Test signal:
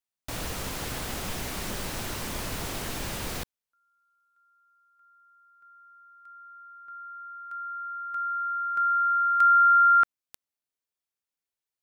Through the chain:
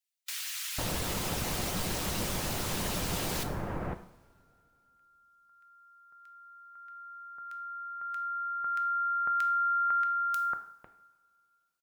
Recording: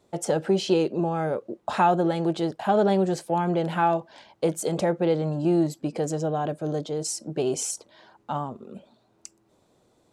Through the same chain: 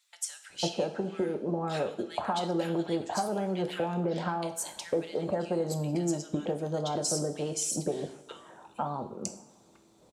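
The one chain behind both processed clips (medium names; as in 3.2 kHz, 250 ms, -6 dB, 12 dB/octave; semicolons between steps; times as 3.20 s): harmonic-percussive split harmonic -9 dB; compression 5:1, threshold -35 dBFS; bands offset in time highs, lows 500 ms, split 1.7 kHz; two-slope reverb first 0.56 s, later 2.5 s, from -19 dB, DRR 7 dB; trim +6 dB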